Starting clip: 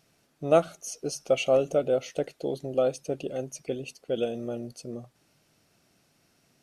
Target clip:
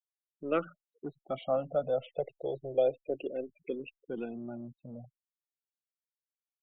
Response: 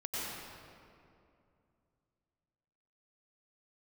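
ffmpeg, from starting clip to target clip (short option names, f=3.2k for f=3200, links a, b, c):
-filter_complex "[0:a]afftfilt=real='re*gte(hypot(re,im),0.0126)':imag='im*gte(hypot(re,im),0.0126)':win_size=1024:overlap=0.75,acrossover=split=280[a][b];[a]asoftclip=type=tanh:threshold=-38.5dB[c];[c][b]amix=inputs=2:normalize=0,aresample=8000,aresample=44100,asplit=2[d][e];[e]afreqshift=-0.31[f];[d][f]amix=inputs=2:normalize=1,volume=-1.5dB"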